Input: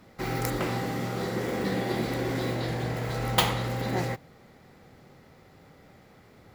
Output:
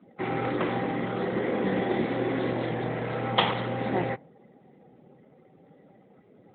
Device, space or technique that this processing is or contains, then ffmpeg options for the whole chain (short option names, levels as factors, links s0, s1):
mobile call with aggressive noise cancelling: -af "highpass=170,afftdn=nr=14:nf=-51,volume=1.5" -ar 8000 -c:a libopencore_amrnb -b:a 12200